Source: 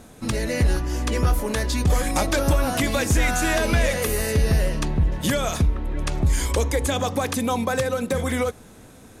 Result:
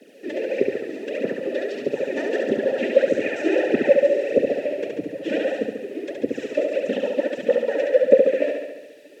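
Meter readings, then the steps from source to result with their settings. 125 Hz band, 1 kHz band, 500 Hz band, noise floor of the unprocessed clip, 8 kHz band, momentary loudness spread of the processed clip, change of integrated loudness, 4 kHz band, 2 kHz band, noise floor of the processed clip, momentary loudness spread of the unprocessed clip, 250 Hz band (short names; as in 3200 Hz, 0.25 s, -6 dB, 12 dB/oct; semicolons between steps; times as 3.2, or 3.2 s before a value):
-22.5 dB, -11.0 dB, +7.0 dB, -47 dBFS, under -20 dB, 12 LU, +0.5 dB, -9.5 dB, -4.0 dB, -46 dBFS, 4 LU, -1.0 dB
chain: HPF 210 Hz 12 dB/oct; bell 300 Hz +14.5 dB 0.73 oct; in parallel at -6.5 dB: sample-and-hold 17×; on the sum: reverb removal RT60 0.8 s; noise vocoder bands 12; added noise blue -40 dBFS; phaser 1.6 Hz, delay 3.5 ms, feedback 68%; vowel filter e; on a send: flutter echo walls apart 12 m, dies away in 1.1 s; on the sum: gain +2.5 dB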